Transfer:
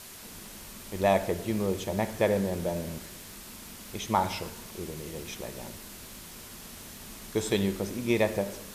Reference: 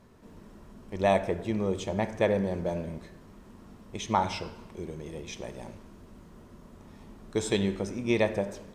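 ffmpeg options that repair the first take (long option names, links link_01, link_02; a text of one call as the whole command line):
ffmpeg -i in.wav -af "adeclick=threshold=4,afwtdn=0.0056" out.wav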